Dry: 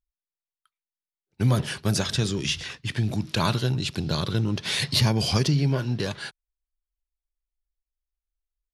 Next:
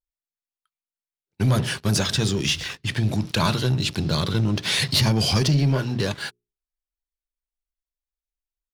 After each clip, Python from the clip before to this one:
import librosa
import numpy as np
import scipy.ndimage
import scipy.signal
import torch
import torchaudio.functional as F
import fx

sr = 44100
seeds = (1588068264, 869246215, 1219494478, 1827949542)

y = fx.hum_notches(x, sr, base_hz=60, count=7)
y = fx.leveller(y, sr, passes=2)
y = y * librosa.db_to_amplitude(-3.0)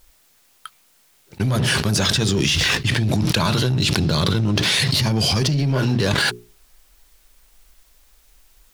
y = fx.env_flatten(x, sr, amount_pct=100)
y = y * librosa.db_to_amplitude(-2.5)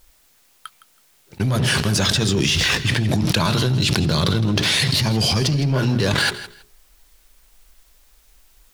y = fx.echo_feedback(x, sr, ms=162, feedback_pct=20, wet_db=-15.0)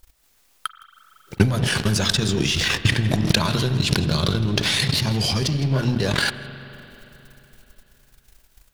y = fx.transient(x, sr, attack_db=12, sustain_db=-12)
y = fx.rev_spring(y, sr, rt60_s=3.5, pass_ms=(37, 44), chirp_ms=20, drr_db=12.0)
y = y * librosa.db_to_amplitude(-3.5)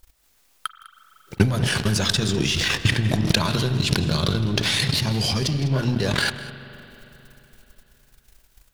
y = x + 10.0 ** (-18.0 / 20.0) * np.pad(x, (int(202 * sr / 1000.0), 0))[:len(x)]
y = y * librosa.db_to_amplitude(-1.0)